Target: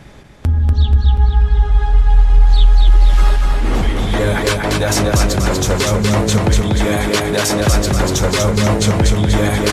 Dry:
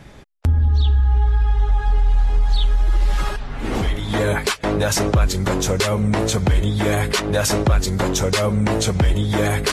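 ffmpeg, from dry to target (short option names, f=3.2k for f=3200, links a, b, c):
-filter_complex "[0:a]asettb=1/sr,asplit=3[a][b][c];[a]atrim=end=6.614[d];[b]atrim=start=6.61:end=7.6,asetpts=PTS-STARTPTS,afade=t=in:d=0.004:c=qsin,afade=t=out:st=0.986:d=0.004:c=qsin,highpass=160[e];[c]atrim=start=7.596[f];[d][e]acrossfade=d=0.004:c1=hsin:c2=qsin[g];[g][f]acrossfade=d=0.004:c1=qsin:c2=hsin,asplit=2[h][i];[i]asoftclip=type=tanh:threshold=-15.5dB,volume=-8dB[j];[h][j]amix=inputs=2:normalize=0,aecho=1:1:241|482|723|964|1205|1446:0.708|0.34|0.163|0.0783|0.0376|0.018"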